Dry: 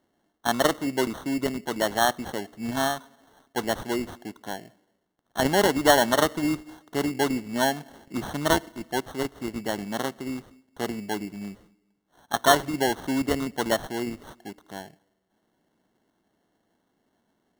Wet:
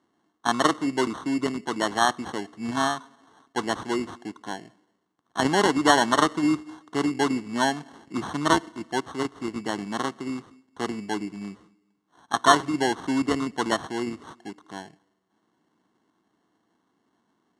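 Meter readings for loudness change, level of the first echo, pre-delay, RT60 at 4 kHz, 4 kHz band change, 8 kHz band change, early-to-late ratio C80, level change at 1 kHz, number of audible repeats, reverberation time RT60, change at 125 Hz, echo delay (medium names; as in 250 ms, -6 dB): +0.5 dB, no echo, no reverb, no reverb, 0.0 dB, -1.5 dB, no reverb, +2.5 dB, no echo, no reverb, -1.0 dB, no echo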